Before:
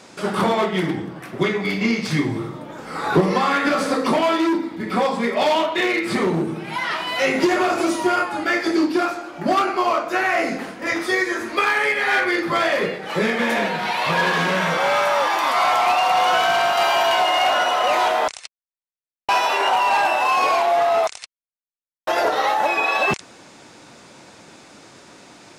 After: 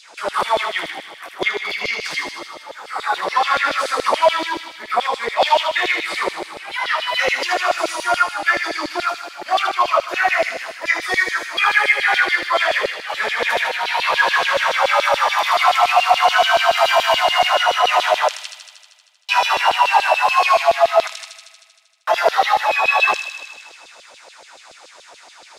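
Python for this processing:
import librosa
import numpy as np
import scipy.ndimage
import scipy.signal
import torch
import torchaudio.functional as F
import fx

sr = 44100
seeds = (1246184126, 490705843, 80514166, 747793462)

y = fx.filter_lfo_highpass(x, sr, shape='saw_down', hz=7.0, low_hz=490.0, high_hz=4200.0, q=3.4)
y = fx.echo_wet_highpass(y, sr, ms=78, feedback_pct=73, hz=3400.0, wet_db=-4.5)
y = F.gain(torch.from_numpy(y), -1.0).numpy()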